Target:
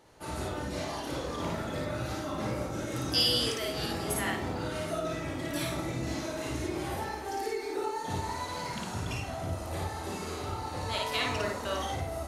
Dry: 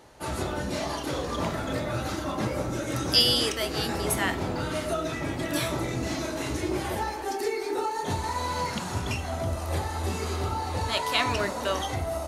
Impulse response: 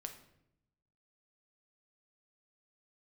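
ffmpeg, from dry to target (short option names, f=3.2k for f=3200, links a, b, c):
-filter_complex "[0:a]asplit=2[a][b];[1:a]atrim=start_sample=2205,adelay=55[c];[b][c]afir=irnorm=-1:irlink=0,volume=3dB[d];[a][d]amix=inputs=2:normalize=0,volume=-7.5dB"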